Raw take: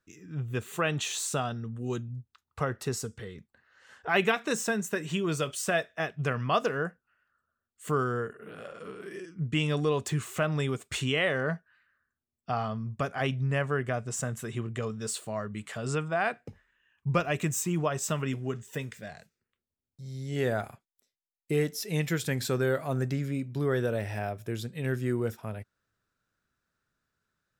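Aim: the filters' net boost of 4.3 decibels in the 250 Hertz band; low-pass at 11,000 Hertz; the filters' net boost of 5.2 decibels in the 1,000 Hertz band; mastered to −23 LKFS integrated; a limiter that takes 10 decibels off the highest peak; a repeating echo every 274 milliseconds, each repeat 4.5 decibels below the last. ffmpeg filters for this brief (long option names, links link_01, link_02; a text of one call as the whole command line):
ffmpeg -i in.wav -af "lowpass=11000,equalizer=frequency=250:width_type=o:gain=5.5,equalizer=frequency=1000:width_type=o:gain=7,alimiter=limit=-17.5dB:level=0:latency=1,aecho=1:1:274|548|822|1096|1370|1644|1918|2192|2466:0.596|0.357|0.214|0.129|0.0772|0.0463|0.0278|0.0167|0.01,volume=6dB" out.wav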